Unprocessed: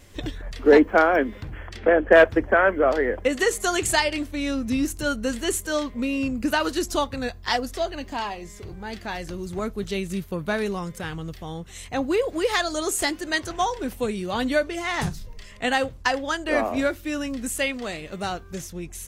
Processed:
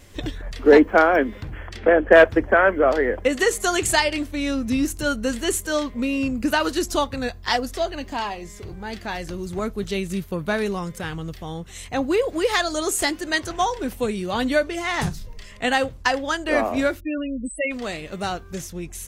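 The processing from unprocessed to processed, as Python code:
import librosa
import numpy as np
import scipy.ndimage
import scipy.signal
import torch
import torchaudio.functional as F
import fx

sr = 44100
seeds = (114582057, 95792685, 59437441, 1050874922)

y = fx.spec_topn(x, sr, count=8, at=(16.99, 17.7), fade=0.02)
y = y * librosa.db_to_amplitude(2.0)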